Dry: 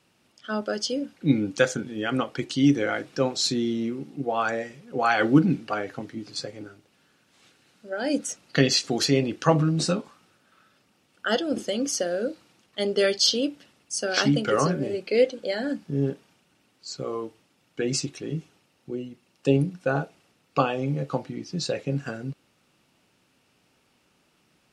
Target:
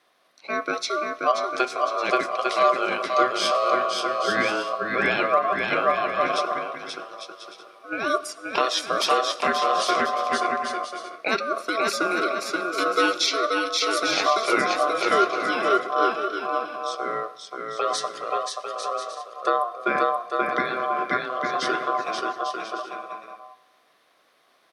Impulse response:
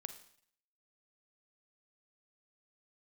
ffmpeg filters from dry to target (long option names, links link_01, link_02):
-filter_complex "[0:a]aeval=exprs='val(0)*sin(2*PI*890*n/s)':channel_layout=same,aecho=1:1:530|848|1039|1153|1222:0.631|0.398|0.251|0.158|0.1,asplit=2[link_01][link_02];[1:a]atrim=start_sample=2205,asetrate=22050,aresample=44100[link_03];[link_02][link_03]afir=irnorm=-1:irlink=0,volume=-10dB[link_04];[link_01][link_04]amix=inputs=2:normalize=0,alimiter=limit=-10.5dB:level=0:latency=1:release=399,highpass=250,equalizer=frequency=7300:width=2.6:gain=-11,volume=2.5dB"